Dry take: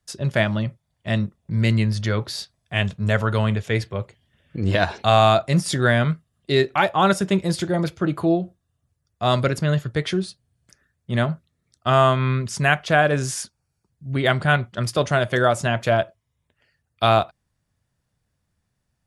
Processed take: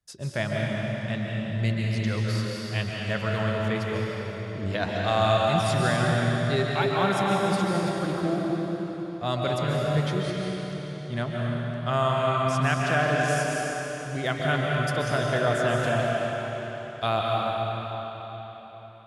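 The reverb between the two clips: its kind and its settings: digital reverb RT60 4.3 s, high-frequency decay 0.9×, pre-delay 0.1 s, DRR -3 dB; gain -9 dB

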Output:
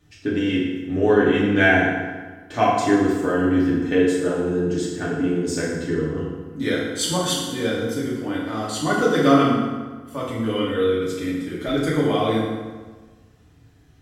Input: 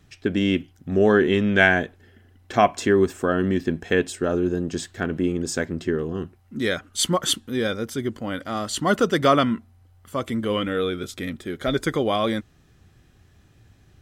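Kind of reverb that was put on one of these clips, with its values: FDN reverb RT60 1.4 s, low-frequency decay 1.05×, high-frequency decay 0.7×, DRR -7 dB; gain -7 dB

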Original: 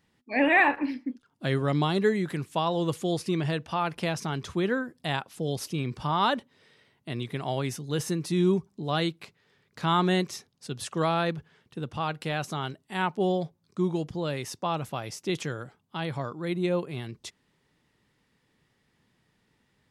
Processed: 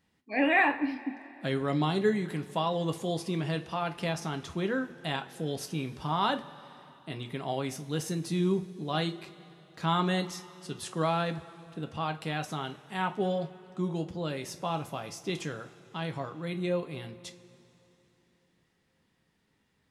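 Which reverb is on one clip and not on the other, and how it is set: two-slope reverb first 0.23 s, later 3.4 s, from -21 dB, DRR 6 dB; gain -4 dB

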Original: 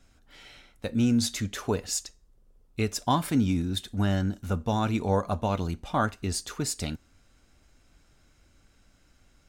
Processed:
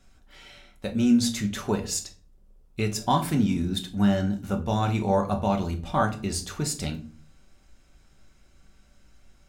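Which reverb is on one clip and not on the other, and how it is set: shoebox room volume 310 m³, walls furnished, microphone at 1.1 m

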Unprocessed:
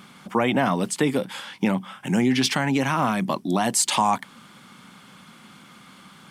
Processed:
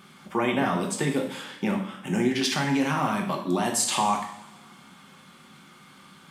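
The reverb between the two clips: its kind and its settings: two-slope reverb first 0.61 s, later 1.8 s, from -18 dB, DRR 0.5 dB; gain -5.5 dB

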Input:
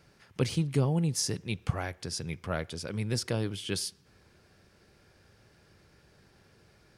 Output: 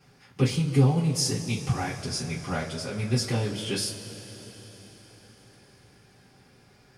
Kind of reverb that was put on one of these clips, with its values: two-slope reverb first 0.21 s, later 5 s, from -22 dB, DRR -9.5 dB; gain -5.5 dB

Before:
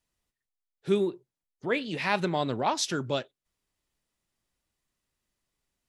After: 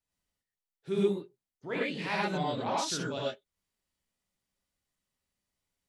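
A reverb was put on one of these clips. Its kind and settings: non-linear reverb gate 0.14 s rising, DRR -5.5 dB; gain -10 dB

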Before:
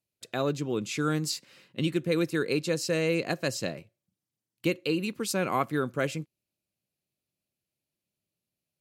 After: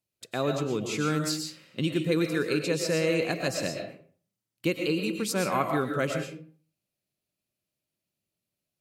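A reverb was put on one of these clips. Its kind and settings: digital reverb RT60 0.46 s, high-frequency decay 0.65×, pre-delay 80 ms, DRR 3.5 dB

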